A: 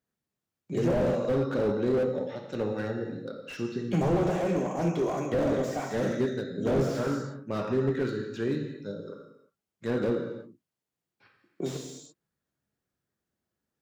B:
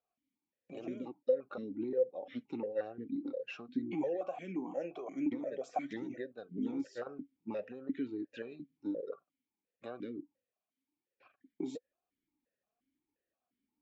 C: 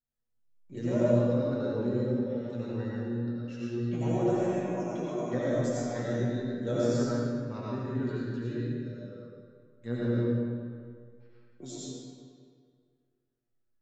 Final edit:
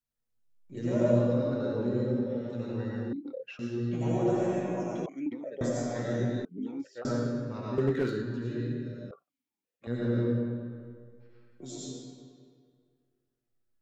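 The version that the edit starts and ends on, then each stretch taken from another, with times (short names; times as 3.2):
C
3.13–3.59 from B
5.06–5.61 from B
6.45–7.05 from B
7.78–8.22 from A
9.11–9.87 from B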